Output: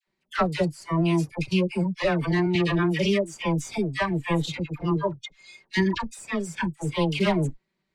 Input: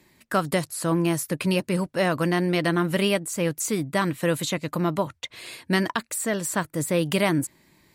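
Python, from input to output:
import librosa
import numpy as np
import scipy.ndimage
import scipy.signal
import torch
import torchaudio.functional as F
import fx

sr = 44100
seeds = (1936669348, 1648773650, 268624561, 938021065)

y = fx.lower_of_two(x, sr, delay_ms=5.2)
y = scipy.signal.sosfilt(scipy.signal.butter(2, 4700.0, 'lowpass', fs=sr, output='sos'), y)
y = fx.dispersion(y, sr, late='lows', ms=75.0, hz=910.0)
y = fx.noise_reduce_blind(y, sr, reduce_db=18)
y = fx.band_squash(y, sr, depth_pct=40, at=(2.55, 3.78))
y = y * librosa.db_to_amplitude(1.0)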